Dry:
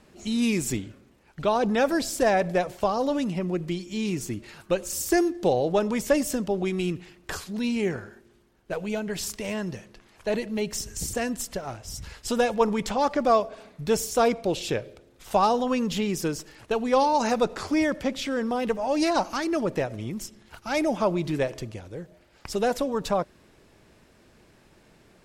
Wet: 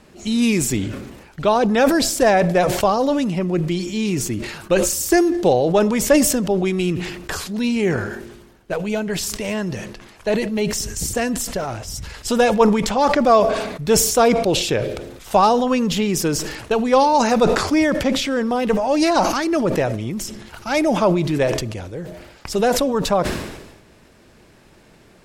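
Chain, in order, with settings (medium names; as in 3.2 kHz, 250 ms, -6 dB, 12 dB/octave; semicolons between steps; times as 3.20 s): decay stretcher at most 52 dB/s; trim +6.5 dB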